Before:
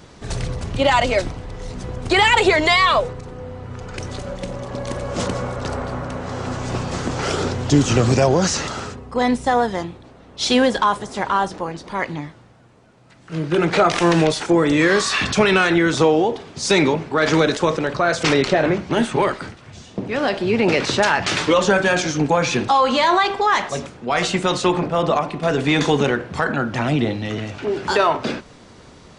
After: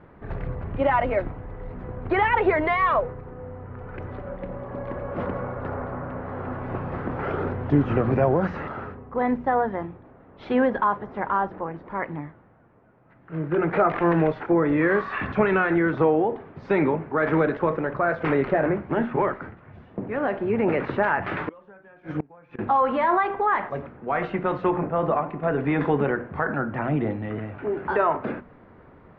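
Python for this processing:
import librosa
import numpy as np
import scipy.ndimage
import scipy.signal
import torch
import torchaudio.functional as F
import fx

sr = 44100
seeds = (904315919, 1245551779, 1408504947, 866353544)

y = scipy.signal.sosfilt(scipy.signal.butter(4, 1900.0, 'lowpass', fs=sr, output='sos'), x)
y = fx.hum_notches(y, sr, base_hz=60, count=4)
y = fx.gate_flip(y, sr, shuts_db=-12.0, range_db=-28, at=(21.37, 22.59))
y = F.gain(torch.from_numpy(y), -4.5).numpy()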